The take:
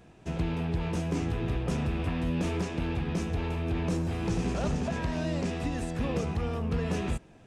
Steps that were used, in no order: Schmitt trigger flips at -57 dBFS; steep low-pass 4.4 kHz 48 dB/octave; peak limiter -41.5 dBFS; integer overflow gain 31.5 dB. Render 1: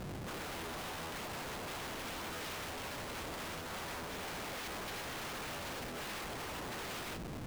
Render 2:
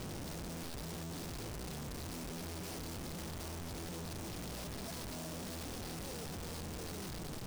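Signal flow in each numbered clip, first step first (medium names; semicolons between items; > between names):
steep low-pass > integer overflow > Schmitt trigger > peak limiter; Schmitt trigger > steep low-pass > integer overflow > peak limiter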